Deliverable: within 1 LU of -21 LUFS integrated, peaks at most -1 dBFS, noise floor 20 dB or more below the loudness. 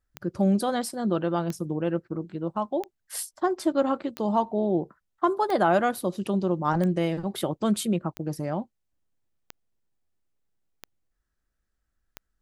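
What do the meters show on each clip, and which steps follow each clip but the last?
clicks 10; loudness -27.0 LUFS; peak -9.5 dBFS; loudness target -21.0 LUFS
-> de-click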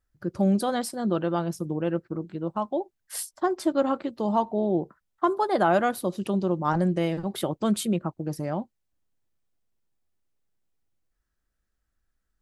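clicks 0; loudness -27.0 LUFS; peak -9.5 dBFS; loudness target -21.0 LUFS
-> gain +6 dB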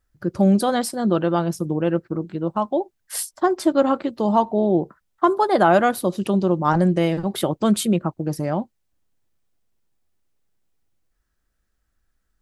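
loudness -21.0 LUFS; peak -3.5 dBFS; noise floor -73 dBFS

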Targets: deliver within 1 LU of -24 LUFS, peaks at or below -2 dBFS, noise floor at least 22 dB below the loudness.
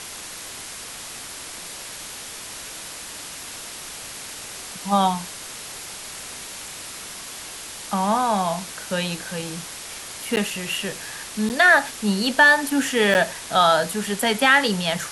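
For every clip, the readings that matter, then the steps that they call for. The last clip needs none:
dropouts 3; longest dropout 9.4 ms; noise floor -37 dBFS; noise floor target -43 dBFS; loudness -21.0 LUFS; peak -3.5 dBFS; loudness target -24.0 LUFS
-> interpolate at 10.36/11.49/13.14, 9.4 ms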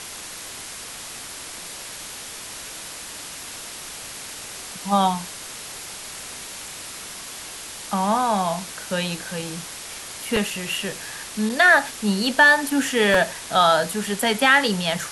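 dropouts 0; noise floor -37 dBFS; noise floor target -43 dBFS
-> denoiser 6 dB, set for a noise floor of -37 dBFS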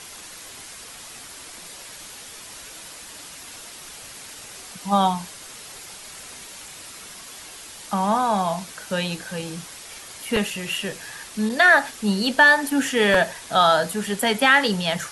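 noise floor -41 dBFS; noise floor target -43 dBFS
-> denoiser 6 dB, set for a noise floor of -41 dBFS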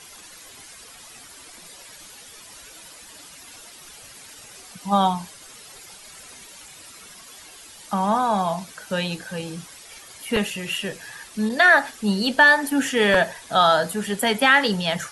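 noise floor -45 dBFS; loudness -20.5 LUFS; peak -3.5 dBFS; loudness target -24.0 LUFS
-> gain -3.5 dB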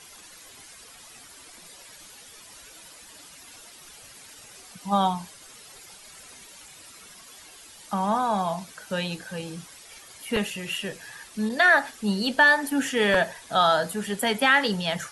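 loudness -24.0 LUFS; peak -7.0 dBFS; noise floor -48 dBFS

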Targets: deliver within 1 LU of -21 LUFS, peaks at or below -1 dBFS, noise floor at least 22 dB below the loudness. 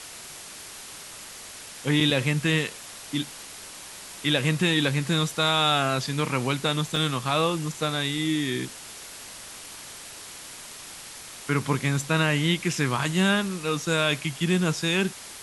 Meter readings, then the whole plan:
dropouts 1; longest dropout 3.0 ms; noise floor -42 dBFS; noise floor target -47 dBFS; loudness -25.0 LUFS; peak -9.0 dBFS; loudness target -21.0 LUFS
-> interpolate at 6.96, 3 ms; denoiser 6 dB, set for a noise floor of -42 dBFS; gain +4 dB

